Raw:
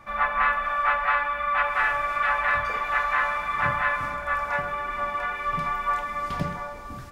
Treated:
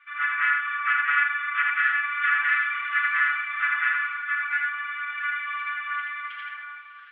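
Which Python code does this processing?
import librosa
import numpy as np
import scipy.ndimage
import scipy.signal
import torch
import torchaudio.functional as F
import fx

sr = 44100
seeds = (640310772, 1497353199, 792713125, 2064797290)

y = scipy.signal.sosfilt(scipy.signal.ellip(3, 1.0, 60, [1400.0, 3200.0], 'bandpass', fs=sr, output='sos'), x)
y = y + 0.96 * np.pad(y, (int(6.9 * sr / 1000.0), 0))[:len(y)]
y = y + 10.0 ** (-3.0 / 20.0) * np.pad(y, (int(80 * sr / 1000.0), 0))[:len(y)]
y = y * 10.0 ** (-2.0 / 20.0)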